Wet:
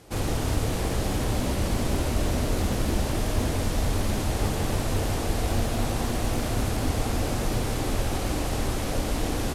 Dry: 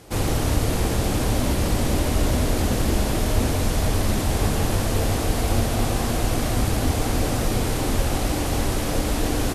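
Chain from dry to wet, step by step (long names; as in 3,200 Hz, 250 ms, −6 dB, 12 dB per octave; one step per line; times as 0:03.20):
on a send at −9.5 dB: convolution reverb RT60 3.6 s, pre-delay 95 ms
on the sum: highs frequency-modulated by the lows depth 0.45 ms
level −4.5 dB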